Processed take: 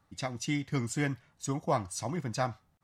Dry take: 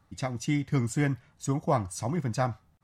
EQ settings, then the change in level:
low-shelf EQ 180 Hz −5.5 dB
dynamic equaliser 4,100 Hz, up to +5 dB, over −49 dBFS, Q 0.77
−2.5 dB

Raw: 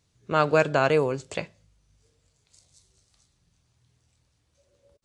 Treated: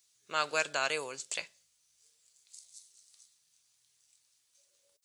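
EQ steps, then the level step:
first difference
+7.0 dB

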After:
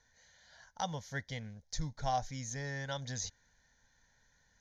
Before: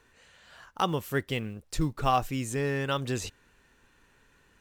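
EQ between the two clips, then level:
transistor ladder low-pass 6,800 Hz, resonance 80%
phaser with its sweep stopped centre 1,800 Hz, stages 8
+6.0 dB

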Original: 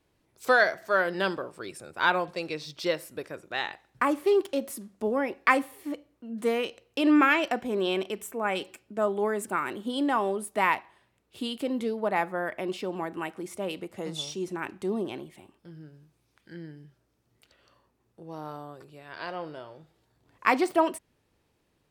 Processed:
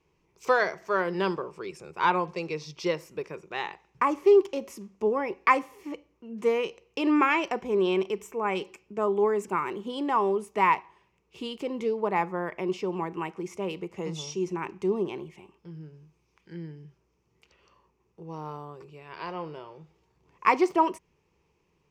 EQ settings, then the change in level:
EQ curve with evenly spaced ripples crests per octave 0.77, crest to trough 10 dB
dynamic equaliser 2,600 Hz, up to −5 dB, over −46 dBFS, Q 2.8
high-frequency loss of the air 53 metres
0.0 dB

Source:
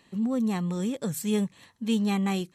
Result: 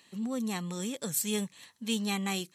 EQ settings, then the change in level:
high-pass filter 160 Hz 6 dB per octave
high-shelf EQ 2,100 Hz +11.5 dB
−5.5 dB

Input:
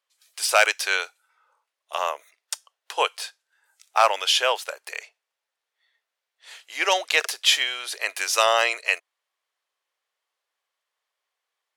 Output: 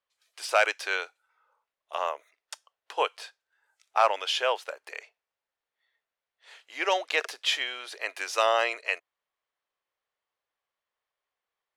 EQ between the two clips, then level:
low-pass filter 2,600 Hz 6 dB per octave
low-shelf EQ 230 Hz +10.5 dB
−4.0 dB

